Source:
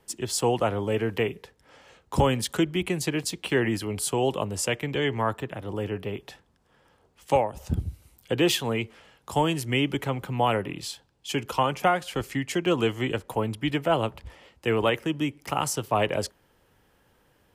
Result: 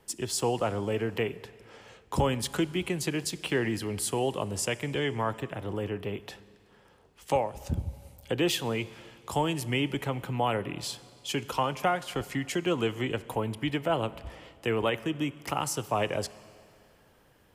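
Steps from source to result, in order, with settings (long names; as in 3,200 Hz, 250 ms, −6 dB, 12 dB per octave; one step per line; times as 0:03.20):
in parallel at +3 dB: downward compressor, threshold −34 dBFS, peak gain reduction 16.5 dB
on the sum: convolution reverb RT60 2.4 s, pre-delay 29 ms, DRR 17.5 dB
level −6.5 dB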